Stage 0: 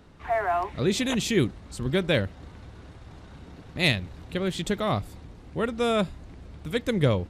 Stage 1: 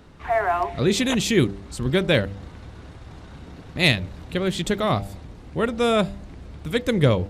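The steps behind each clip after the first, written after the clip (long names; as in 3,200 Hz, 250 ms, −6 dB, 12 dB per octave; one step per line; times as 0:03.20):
hum removal 98.81 Hz, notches 9
level +4.5 dB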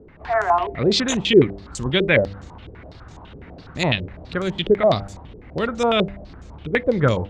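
low-pass on a step sequencer 12 Hz 430–6,800 Hz
level −1 dB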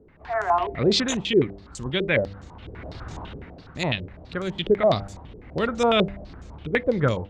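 automatic gain control gain up to 14 dB
level −7.5 dB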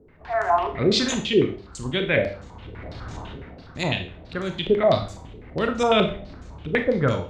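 four-comb reverb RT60 0.39 s, combs from 25 ms, DRR 5.5 dB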